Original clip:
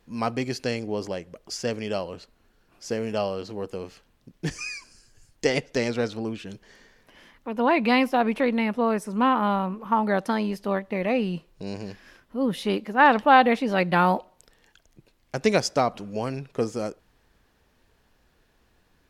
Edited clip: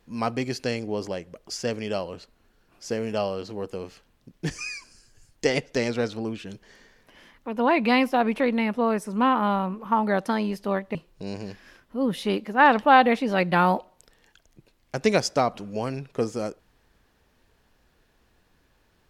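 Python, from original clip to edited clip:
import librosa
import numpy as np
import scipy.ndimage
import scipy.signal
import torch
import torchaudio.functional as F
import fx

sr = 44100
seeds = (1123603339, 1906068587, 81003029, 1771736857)

y = fx.edit(x, sr, fx.cut(start_s=10.95, length_s=0.4), tone=tone)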